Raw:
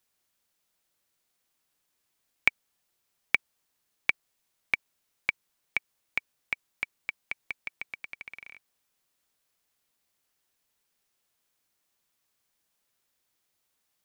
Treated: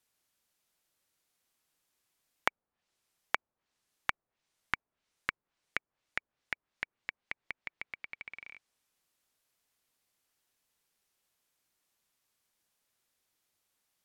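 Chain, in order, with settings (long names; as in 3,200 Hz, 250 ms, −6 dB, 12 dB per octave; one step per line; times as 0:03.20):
treble cut that deepens with the level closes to 980 Hz, closed at −34.5 dBFS
level −1.5 dB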